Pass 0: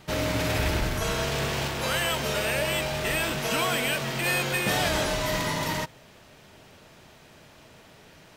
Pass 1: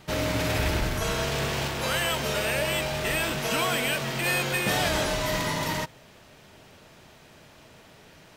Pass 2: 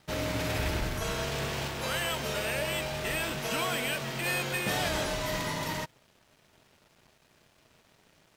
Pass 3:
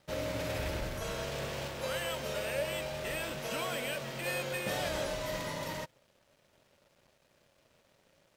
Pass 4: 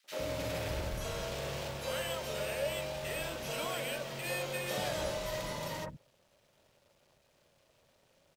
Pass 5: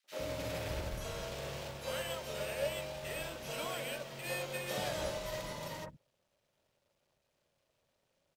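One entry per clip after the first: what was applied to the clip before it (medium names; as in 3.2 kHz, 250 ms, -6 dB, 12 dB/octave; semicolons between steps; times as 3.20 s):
no audible change
crossover distortion -53 dBFS; trim -4.5 dB
peaking EQ 550 Hz +11.5 dB 0.23 oct; trim -6 dB
three bands offset in time highs, mids, lows 40/110 ms, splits 260/1700 Hz
upward expansion 1.5:1, over -51 dBFS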